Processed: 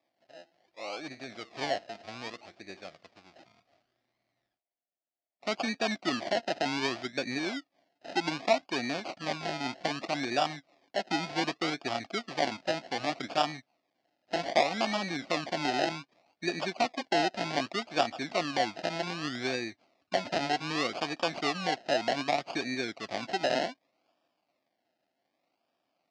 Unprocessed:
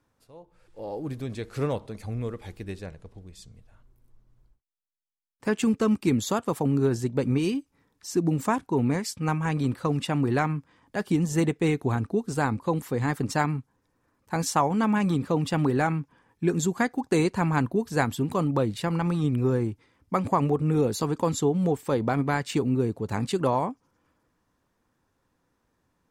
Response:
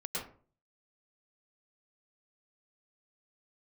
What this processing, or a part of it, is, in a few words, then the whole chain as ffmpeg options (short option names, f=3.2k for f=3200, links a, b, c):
circuit-bent sampling toy: -af "acrusher=samples=30:mix=1:aa=0.000001:lfo=1:lforange=18:lforate=0.65,highpass=400,equalizer=f=450:t=q:w=4:g=-10,equalizer=f=680:t=q:w=4:g=9,equalizer=f=970:t=q:w=4:g=-7,equalizer=f=1.5k:t=q:w=4:g=-4,equalizer=f=2.3k:t=q:w=4:g=3,equalizer=f=4.7k:t=q:w=4:g=5,lowpass=f=5.6k:w=0.5412,lowpass=f=5.6k:w=1.3066,volume=-1.5dB"